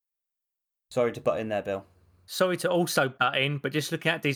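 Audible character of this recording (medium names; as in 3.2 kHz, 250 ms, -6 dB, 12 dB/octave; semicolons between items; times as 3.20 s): noise floor -87 dBFS; spectral tilt -4.5 dB/octave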